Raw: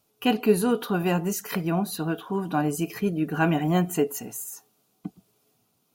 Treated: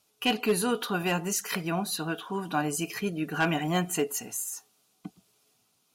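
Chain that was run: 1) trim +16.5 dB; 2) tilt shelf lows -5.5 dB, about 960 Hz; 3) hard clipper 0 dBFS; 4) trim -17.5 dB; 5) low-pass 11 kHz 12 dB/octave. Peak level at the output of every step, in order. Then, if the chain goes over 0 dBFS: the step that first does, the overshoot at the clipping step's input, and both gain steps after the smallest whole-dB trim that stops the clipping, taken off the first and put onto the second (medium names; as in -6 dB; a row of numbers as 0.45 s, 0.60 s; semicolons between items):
+8.0 dBFS, +7.0 dBFS, 0.0 dBFS, -17.5 dBFS, -17.0 dBFS; step 1, 7.0 dB; step 1 +9.5 dB, step 4 -10.5 dB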